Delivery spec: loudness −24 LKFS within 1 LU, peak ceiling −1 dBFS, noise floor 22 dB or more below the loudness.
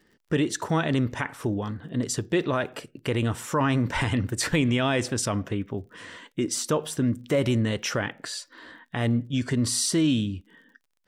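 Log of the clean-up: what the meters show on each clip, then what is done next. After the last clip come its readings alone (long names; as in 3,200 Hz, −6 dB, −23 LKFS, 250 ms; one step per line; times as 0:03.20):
crackle rate 46 per second; integrated loudness −26.5 LKFS; sample peak −12.0 dBFS; target loudness −24.0 LKFS
→ click removal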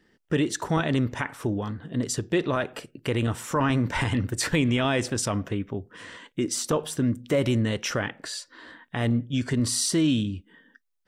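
crackle rate 0.090 per second; integrated loudness −26.5 LKFS; sample peak −12.0 dBFS; target loudness −24.0 LKFS
→ level +2.5 dB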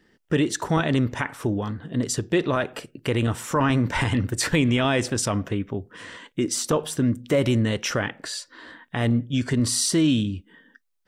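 integrated loudness −24.0 LKFS; sample peak −9.5 dBFS; background noise floor −65 dBFS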